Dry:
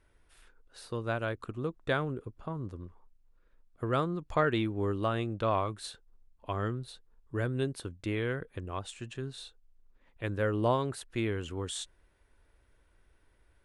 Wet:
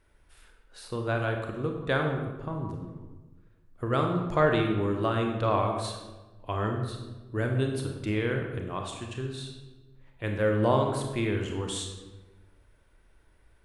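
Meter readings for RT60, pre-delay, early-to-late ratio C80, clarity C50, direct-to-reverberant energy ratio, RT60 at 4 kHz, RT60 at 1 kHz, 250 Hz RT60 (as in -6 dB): 1.2 s, 27 ms, 6.5 dB, 4.0 dB, 2.0 dB, 0.80 s, 1.1 s, 1.5 s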